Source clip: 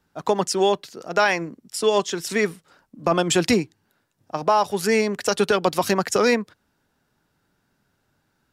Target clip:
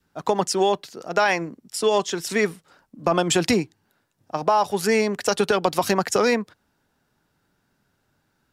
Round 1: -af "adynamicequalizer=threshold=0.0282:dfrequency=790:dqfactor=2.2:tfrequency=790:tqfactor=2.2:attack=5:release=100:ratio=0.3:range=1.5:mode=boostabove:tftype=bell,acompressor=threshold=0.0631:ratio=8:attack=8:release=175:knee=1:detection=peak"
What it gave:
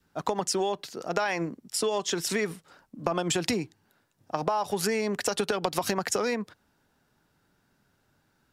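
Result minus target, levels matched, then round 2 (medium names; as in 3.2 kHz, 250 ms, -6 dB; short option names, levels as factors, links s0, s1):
compression: peak gain reduction +9 dB
-af "adynamicequalizer=threshold=0.0282:dfrequency=790:dqfactor=2.2:tfrequency=790:tqfactor=2.2:attack=5:release=100:ratio=0.3:range=1.5:mode=boostabove:tftype=bell,acompressor=threshold=0.2:ratio=8:attack=8:release=175:knee=1:detection=peak"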